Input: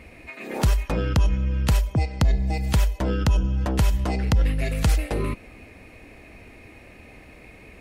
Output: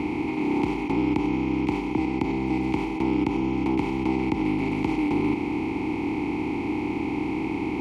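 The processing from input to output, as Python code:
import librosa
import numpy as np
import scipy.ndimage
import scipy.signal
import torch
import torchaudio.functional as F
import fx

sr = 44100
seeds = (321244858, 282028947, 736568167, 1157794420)

y = fx.bin_compress(x, sr, power=0.2)
y = fx.vowel_filter(y, sr, vowel='u')
y = fx.peak_eq(y, sr, hz=390.0, db=6.5, octaves=0.64)
y = y * 10.0 ** (6.0 / 20.0)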